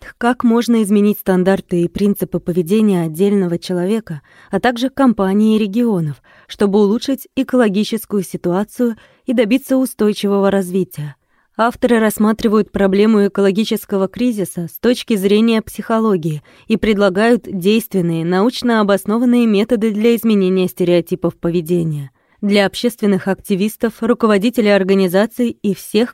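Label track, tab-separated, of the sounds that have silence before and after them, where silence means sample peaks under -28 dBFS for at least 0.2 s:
4.530000	6.130000	sound
6.500000	8.930000	sound
9.280000	11.110000	sound
11.590000	16.390000	sound
16.700000	22.060000	sound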